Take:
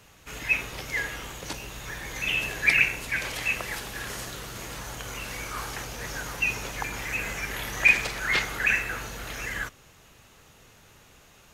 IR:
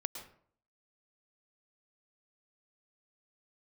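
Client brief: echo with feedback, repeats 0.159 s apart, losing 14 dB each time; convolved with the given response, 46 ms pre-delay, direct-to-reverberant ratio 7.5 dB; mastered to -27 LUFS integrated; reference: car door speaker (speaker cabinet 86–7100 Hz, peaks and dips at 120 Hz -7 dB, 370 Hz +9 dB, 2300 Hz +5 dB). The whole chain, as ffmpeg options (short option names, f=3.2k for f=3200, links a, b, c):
-filter_complex "[0:a]aecho=1:1:159|318:0.2|0.0399,asplit=2[a][b];[1:a]atrim=start_sample=2205,adelay=46[c];[b][c]afir=irnorm=-1:irlink=0,volume=-7.5dB[d];[a][d]amix=inputs=2:normalize=0,highpass=86,equalizer=f=120:t=q:w=4:g=-7,equalizer=f=370:t=q:w=4:g=9,equalizer=f=2.3k:t=q:w=4:g=5,lowpass=f=7.1k:w=0.5412,lowpass=f=7.1k:w=1.3066,volume=-4dB"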